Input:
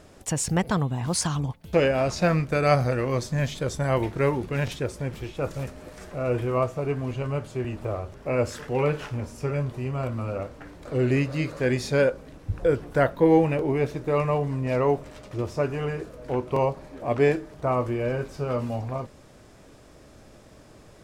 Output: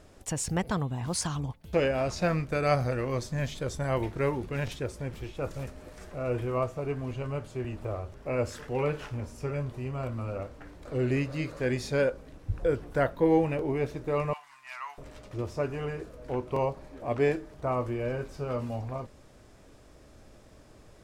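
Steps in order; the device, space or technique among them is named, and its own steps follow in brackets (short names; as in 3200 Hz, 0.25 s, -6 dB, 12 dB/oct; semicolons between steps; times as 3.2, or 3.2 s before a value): low shelf boost with a cut just above (low shelf 83 Hz +6.5 dB; bell 150 Hz -2.5 dB 0.9 oct); 14.33–14.98 inverse Chebyshev high-pass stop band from 520 Hz, stop band 40 dB; gain -5 dB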